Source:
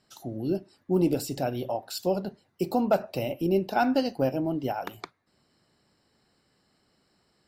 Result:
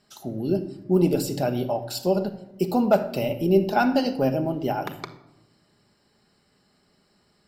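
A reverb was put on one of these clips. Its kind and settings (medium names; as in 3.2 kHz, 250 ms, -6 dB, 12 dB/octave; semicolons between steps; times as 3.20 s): simulated room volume 3200 m³, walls furnished, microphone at 1.3 m; trim +3 dB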